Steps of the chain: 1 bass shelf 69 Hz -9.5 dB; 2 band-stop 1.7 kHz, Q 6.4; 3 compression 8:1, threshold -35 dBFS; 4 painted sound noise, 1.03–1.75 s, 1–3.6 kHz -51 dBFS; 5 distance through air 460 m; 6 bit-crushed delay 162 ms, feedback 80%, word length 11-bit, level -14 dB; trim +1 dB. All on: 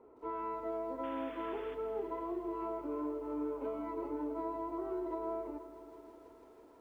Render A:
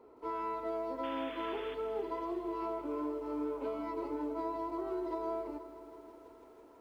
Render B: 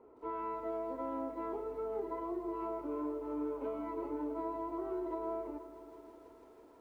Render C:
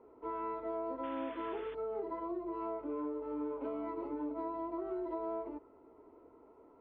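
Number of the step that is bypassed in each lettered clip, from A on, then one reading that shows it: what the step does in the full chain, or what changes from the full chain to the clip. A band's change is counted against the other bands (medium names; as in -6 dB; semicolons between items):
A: 5, 2 kHz band +3.5 dB; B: 4, 2 kHz band -4.0 dB; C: 6, 125 Hz band -2.5 dB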